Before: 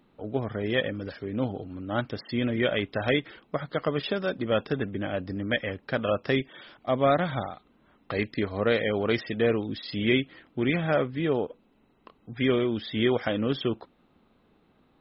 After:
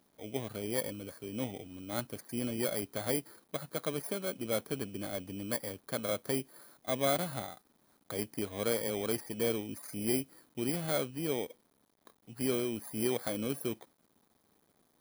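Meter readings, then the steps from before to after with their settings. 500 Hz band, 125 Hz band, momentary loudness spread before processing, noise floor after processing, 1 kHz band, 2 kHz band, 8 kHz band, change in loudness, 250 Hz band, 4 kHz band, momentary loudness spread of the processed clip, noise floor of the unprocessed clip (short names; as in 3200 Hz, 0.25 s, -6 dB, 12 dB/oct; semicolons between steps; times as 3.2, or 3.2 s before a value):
-8.5 dB, -10.0 dB, 9 LU, -72 dBFS, -9.5 dB, -12.5 dB, n/a, -7.5 dB, -8.5 dB, -8.0 dB, 9 LU, -65 dBFS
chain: FFT order left unsorted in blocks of 16 samples; requantised 10-bit, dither none; low shelf 65 Hz -11.5 dB; gain -7.5 dB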